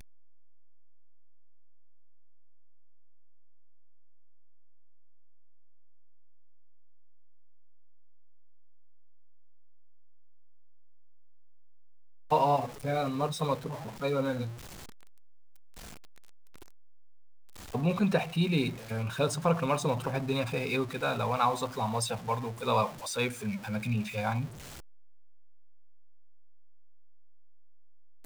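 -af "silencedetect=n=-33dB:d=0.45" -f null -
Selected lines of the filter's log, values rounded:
silence_start: 0.00
silence_end: 12.31 | silence_duration: 12.31
silence_start: 14.48
silence_end: 17.74 | silence_duration: 3.26
silence_start: 24.45
silence_end: 28.25 | silence_duration: 3.80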